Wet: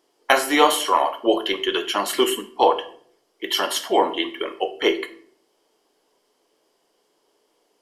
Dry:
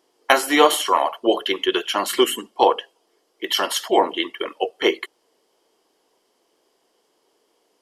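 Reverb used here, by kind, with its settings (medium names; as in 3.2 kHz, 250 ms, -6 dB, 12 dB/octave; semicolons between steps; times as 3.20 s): simulated room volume 65 m³, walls mixed, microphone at 0.31 m; trim -1.5 dB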